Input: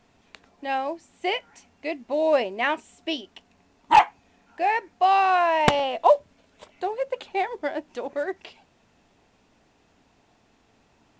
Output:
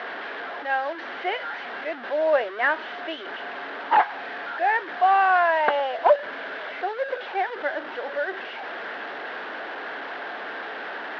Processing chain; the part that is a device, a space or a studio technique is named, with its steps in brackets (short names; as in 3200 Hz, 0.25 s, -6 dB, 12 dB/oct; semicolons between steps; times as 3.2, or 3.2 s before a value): digital answering machine (BPF 310–3200 Hz; delta modulation 32 kbps, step -28.5 dBFS; speaker cabinet 430–3100 Hz, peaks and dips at 970 Hz -3 dB, 1600 Hz +9 dB, 2500 Hz -7 dB); gain +1.5 dB